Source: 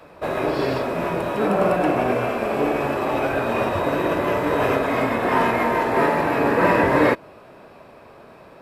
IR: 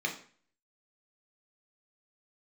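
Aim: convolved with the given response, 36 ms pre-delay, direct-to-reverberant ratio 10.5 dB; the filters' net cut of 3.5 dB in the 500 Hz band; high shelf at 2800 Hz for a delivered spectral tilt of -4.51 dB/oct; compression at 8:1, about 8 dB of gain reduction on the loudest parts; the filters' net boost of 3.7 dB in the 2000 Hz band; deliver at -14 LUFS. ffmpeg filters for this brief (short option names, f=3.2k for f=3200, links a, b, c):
-filter_complex "[0:a]equalizer=f=500:t=o:g=-4.5,equalizer=f=2k:t=o:g=8,highshelf=f=2.8k:g=-8.5,acompressor=threshold=-22dB:ratio=8,asplit=2[a][b];[1:a]atrim=start_sample=2205,adelay=36[c];[b][c]afir=irnorm=-1:irlink=0,volume=-17dB[d];[a][d]amix=inputs=2:normalize=0,volume=11.5dB"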